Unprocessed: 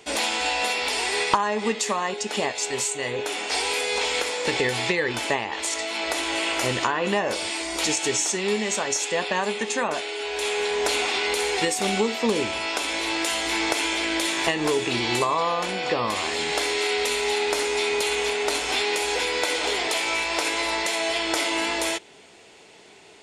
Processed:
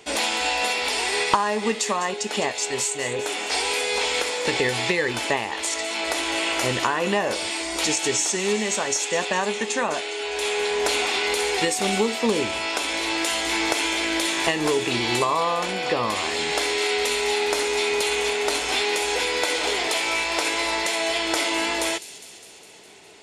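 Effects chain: thin delay 0.204 s, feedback 67%, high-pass 4700 Hz, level -11 dB; gain +1 dB

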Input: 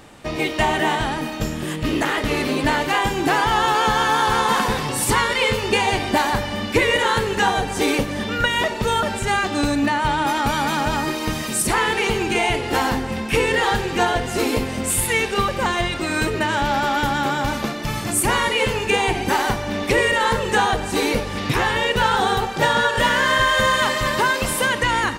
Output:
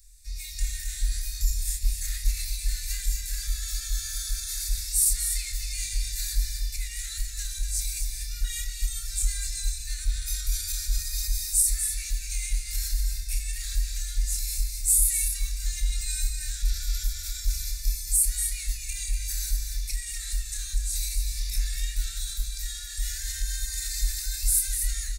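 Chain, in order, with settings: high shelf 6100 Hz +6 dB; fixed phaser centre 830 Hz, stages 6; doubler 28 ms -3 dB; AGC; tilt shelf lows +5.5 dB, about 820 Hz; limiter -9 dBFS, peak gain reduction 9 dB; inverse Chebyshev band-stop 170–920 Hz, stop band 70 dB; echo 0.243 s -7 dB

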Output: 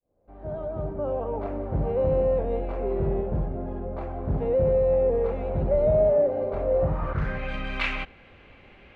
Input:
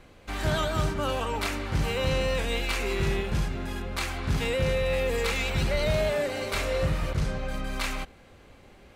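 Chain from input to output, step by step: opening faded in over 1.59 s; low-pass sweep 620 Hz -> 2600 Hz, 6.75–7.48

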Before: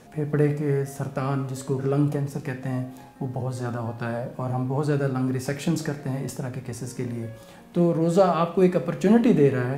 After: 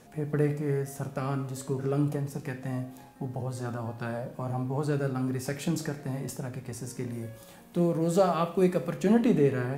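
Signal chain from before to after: high shelf 7700 Hz +5.5 dB, from 7.12 s +11.5 dB, from 8.97 s +4.5 dB; gain -5 dB

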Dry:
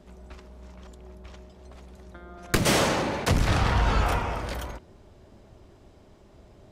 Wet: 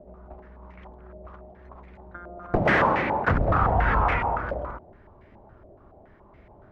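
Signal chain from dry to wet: stepped low-pass 7.1 Hz 620–2100 Hz; gain -1 dB

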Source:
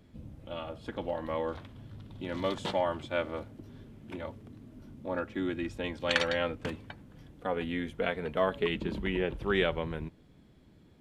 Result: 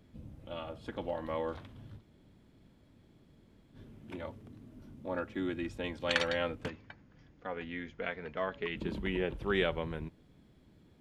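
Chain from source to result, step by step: 1.99–3.75 room tone, crossfade 0.06 s; 6.68–8.77 rippled Chebyshev low-pass 6900 Hz, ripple 6 dB; gain -2.5 dB

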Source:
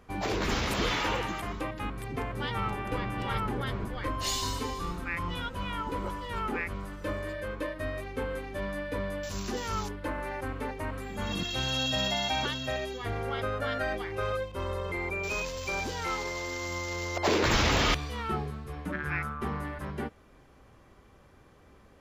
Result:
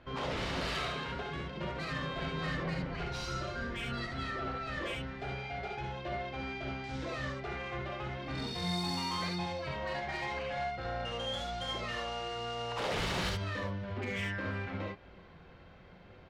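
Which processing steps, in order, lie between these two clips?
LPF 3300 Hz 24 dB/oct; in parallel at -3 dB: compressor, threshold -44 dBFS, peak gain reduction 20 dB; on the sum: soft clip -27.5 dBFS, distortion -12 dB; on a send: echo 0.455 s -22.5 dB; on the sum: non-linear reverb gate 0.12 s rising, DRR 0 dB; speed mistake 33 rpm record played at 45 rpm; gain -6 dB

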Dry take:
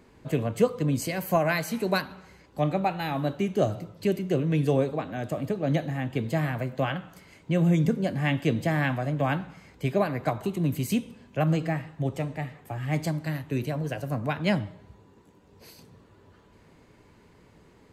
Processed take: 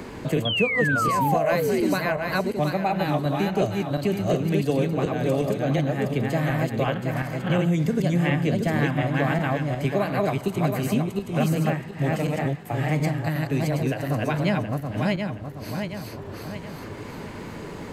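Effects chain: regenerating reverse delay 0.361 s, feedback 48%, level -1 dB; painted sound fall, 0.45–1.94, 280–3400 Hz -23 dBFS; three-band squash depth 70%

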